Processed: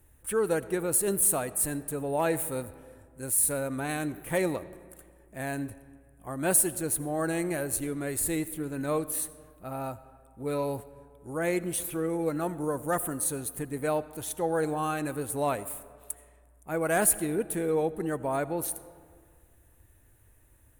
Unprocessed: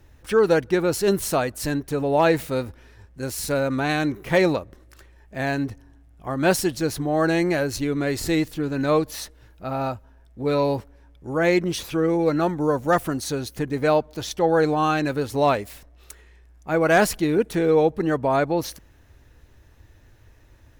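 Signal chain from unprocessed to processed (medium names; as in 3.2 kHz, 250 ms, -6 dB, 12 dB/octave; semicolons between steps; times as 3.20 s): resonant high shelf 7.1 kHz +12 dB, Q 3; reverberation RT60 2.0 s, pre-delay 40 ms, DRR 16 dB; trim -9 dB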